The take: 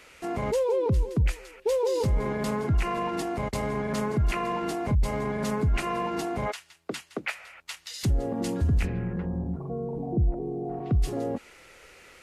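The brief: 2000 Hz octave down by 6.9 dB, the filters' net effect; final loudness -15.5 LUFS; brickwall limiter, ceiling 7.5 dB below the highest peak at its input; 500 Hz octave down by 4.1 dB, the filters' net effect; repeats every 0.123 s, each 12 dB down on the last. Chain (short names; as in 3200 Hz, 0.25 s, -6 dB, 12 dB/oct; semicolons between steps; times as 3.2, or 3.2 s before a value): bell 500 Hz -4.5 dB; bell 2000 Hz -8.5 dB; limiter -24 dBFS; feedback echo 0.123 s, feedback 25%, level -12 dB; gain +17.5 dB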